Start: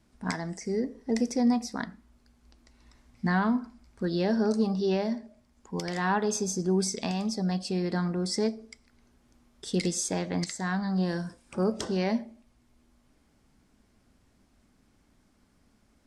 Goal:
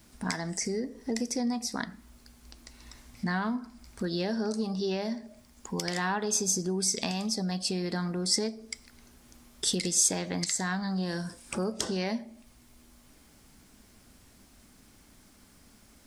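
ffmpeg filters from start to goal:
-af "equalizer=f=8.6k:t=o:w=2.2:g=-5.5,acompressor=threshold=-40dB:ratio=2.5,crystalizer=i=4.5:c=0,volume=6dB"

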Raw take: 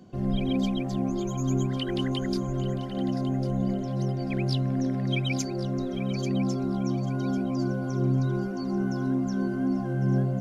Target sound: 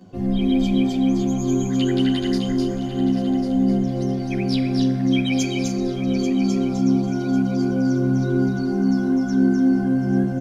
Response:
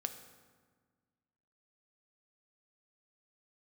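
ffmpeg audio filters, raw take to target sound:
-filter_complex "[0:a]aecho=1:1:253.6|291.5:0.631|0.282,asplit=2[a][b];[1:a]atrim=start_sample=2205,adelay=11[c];[b][c]afir=irnorm=-1:irlink=0,volume=3.5dB[d];[a][d]amix=inputs=2:normalize=0"

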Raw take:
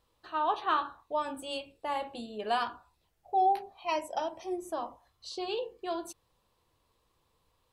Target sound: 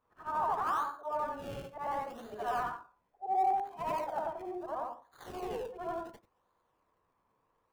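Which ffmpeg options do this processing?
-filter_complex "[0:a]afftfilt=real='re':imag='-im':win_size=8192:overlap=0.75,tiltshelf=f=920:g=-5,asplit=2[a][b];[b]highpass=f=720:p=1,volume=14dB,asoftclip=type=tanh:threshold=-19.5dB[c];[a][c]amix=inputs=2:normalize=0,lowpass=f=1.1k:p=1,volume=-6dB,acrossover=split=130|680|2000[d][e][f][g];[g]acrusher=samples=31:mix=1:aa=0.000001:lfo=1:lforange=31:lforate=0.71[h];[d][e][f][h]amix=inputs=4:normalize=0"

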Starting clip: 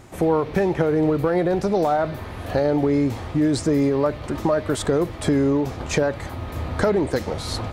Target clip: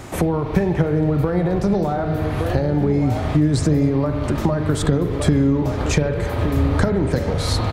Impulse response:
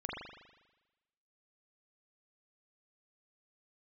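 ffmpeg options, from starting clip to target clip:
-filter_complex "[0:a]asplit=2[a][b];[b]adelay=1166,volume=-10dB,highshelf=f=4k:g=-26.2[c];[a][c]amix=inputs=2:normalize=0,asplit=2[d][e];[1:a]atrim=start_sample=2205,lowshelf=f=350:g=-8[f];[e][f]afir=irnorm=-1:irlink=0,volume=-4.5dB[g];[d][g]amix=inputs=2:normalize=0,acrossover=split=190[h][i];[i]acompressor=threshold=-30dB:ratio=6[j];[h][j]amix=inputs=2:normalize=0,volume=8dB"

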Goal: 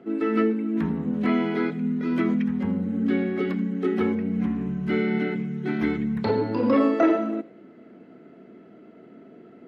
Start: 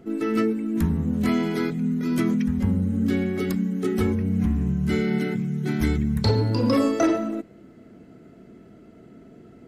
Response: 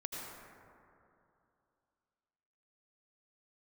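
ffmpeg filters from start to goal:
-filter_complex "[0:a]acrossover=split=180 3700:gain=0.0708 1 0.1[a][b][c];[a][b][c]amix=inputs=3:normalize=0,acrossover=split=3800[d][e];[e]acompressor=threshold=-58dB:ratio=4:attack=1:release=60[f];[d][f]amix=inputs=2:normalize=0,asplit=2[g][h];[1:a]atrim=start_sample=2205,atrim=end_sample=3969[i];[h][i]afir=irnorm=-1:irlink=0,volume=0dB[j];[g][j]amix=inputs=2:normalize=0,volume=-2.5dB"

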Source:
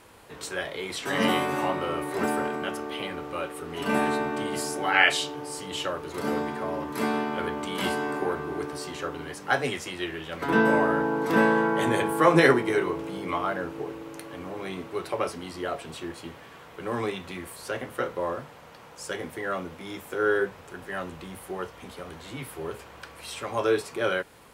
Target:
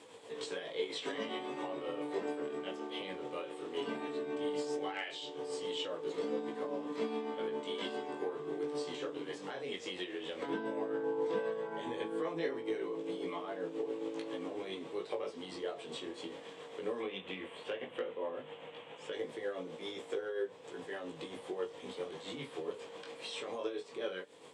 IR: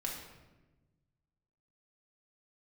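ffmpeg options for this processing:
-filter_complex "[0:a]acrossover=split=6100[a][b];[b]acompressor=threshold=-56dB:ratio=4:attack=1:release=60[c];[a][c]amix=inputs=2:normalize=0,asettb=1/sr,asplit=3[d][e][f];[d]atrim=end=17.004[g];[e]atrim=start=17:end=19.13,asetpts=PTS-STARTPTS,afade=t=in:d=0.004:c=qsin,afade=t=out:st=2.126:d=0.004:c=qsin,highshelf=f=3.8k:t=q:w=3:g=-8.5[h];[f]atrim=start=19.126[i];[g][h]acrossfade=d=0.004:c1=hsin:c2=qsin[j];[j][i]acrossfade=d=0.004:c1=qsin:c2=hsin,acompressor=threshold=-36dB:ratio=4,flanger=delay=17.5:depth=4:speed=0.15,tremolo=f=7.4:d=0.42,flanger=delay=5.8:depth=1.6:regen=-73:speed=1.4:shape=triangular,aeval=exprs='0.0266*(cos(1*acos(clip(val(0)/0.0266,-1,1)))-cos(1*PI/2))+0.000422*(cos(6*acos(clip(val(0)/0.0266,-1,1)))-cos(6*PI/2))':c=same,highpass=190,equalizer=f=280:t=q:w=4:g=4,equalizer=f=470:t=q:w=4:g=10,equalizer=f=1.4k:t=q:w=4:g=-7,equalizer=f=3.4k:t=q:w=4:g=7,equalizer=f=7.9k:t=q:w=4:g=6,lowpass=f=8.9k:w=0.5412,lowpass=f=8.9k:w=1.3066,volume=4.5dB"

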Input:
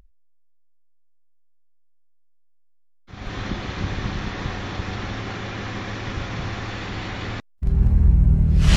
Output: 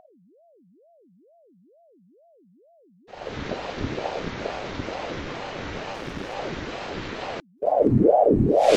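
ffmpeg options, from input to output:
-filter_complex "[0:a]asettb=1/sr,asplit=3[a][b][c];[a]atrim=end=5.934[d];[b]atrim=start=5.93:end=6.35,asetpts=PTS-STARTPTS,afade=t=in:d=0.004:c=qsin,afade=t=out:st=0.416:d=0.004:c=qsin,aeval=exprs='clip(val(0),-1,0.0282)':c=same[e];[c]atrim=start=6.346[f];[d][e]acrossfade=d=0.004:c1=hsin:c2=qsin[g];[g][f]acrossfade=d=0.004:c1=qsin:c2=hsin,aeval=exprs='val(0)*sin(2*PI*430*n/s+430*0.6/2.2*sin(2*PI*2.2*n/s))':c=same"

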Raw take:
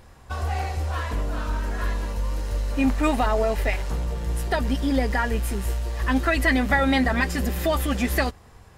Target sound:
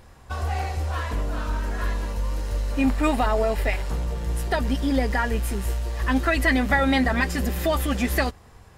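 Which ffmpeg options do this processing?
-filter_complex "[0:a]asettb=1/sr,asplit=3[a][b][c];[a]atrim=end=2.824[d];[b]atrim=start=2.82:end=3.92,asetpts=PTS-STARTPTS,afade=t=in:d=0.004:c=qsin,afade=t=out:st=1.096:d=0.004:c=qsin,bandreject=f=6.2k:w=13[e];[c]atrim=start=3.916[f];[d][e]acrossfade=d=0.004:c1=hsin:c2=qsin[g];[g][f]acrossfade=d=0.004:c1=qsin:c2=hsin"

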